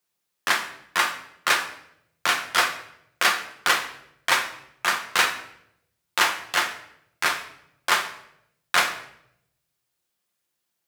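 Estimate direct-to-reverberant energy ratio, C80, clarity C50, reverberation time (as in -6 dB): 3.5 dB, 13.0 dB, 10.0 dB, 0.75 s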